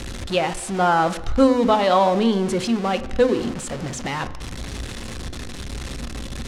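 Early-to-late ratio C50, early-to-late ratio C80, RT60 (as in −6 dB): 14.5 dB, 17.0 dB, 1.0 s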